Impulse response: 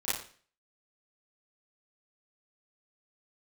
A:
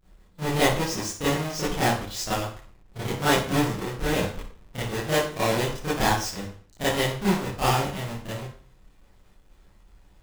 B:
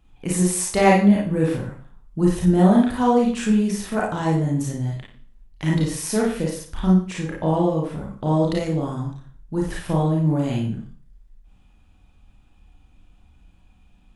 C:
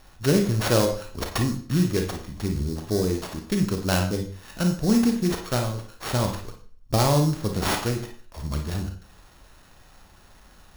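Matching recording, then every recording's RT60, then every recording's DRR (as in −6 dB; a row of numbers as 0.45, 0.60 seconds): A; 0.45, 0.45, 0.45 seconds; −13.0, −4.0, 3.0 decibels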